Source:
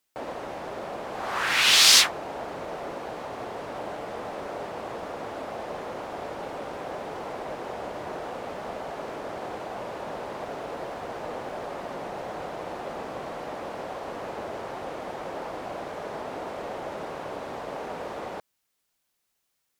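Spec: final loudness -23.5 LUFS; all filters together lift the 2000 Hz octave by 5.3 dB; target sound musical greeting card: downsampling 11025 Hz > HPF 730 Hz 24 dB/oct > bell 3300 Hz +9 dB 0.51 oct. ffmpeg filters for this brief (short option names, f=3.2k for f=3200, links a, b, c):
-af "equalizer=f=2k:t=o:g=4.5,aresample=11025,aresample=44100,highpass=f=730:w=0.5412,highpass=f=730:w=1.3066,equalizer=f=3.3k:t=o:w=0.51:g=9,volume=-11dB"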